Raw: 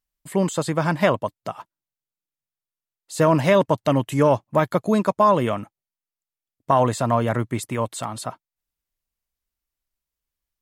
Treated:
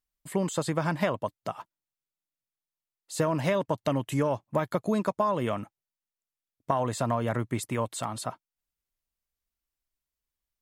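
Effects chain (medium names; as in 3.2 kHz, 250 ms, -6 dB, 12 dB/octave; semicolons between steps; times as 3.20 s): compression, threshold -19 dBFS, peak gain reduction 7.5 dB; trim -3.5 dB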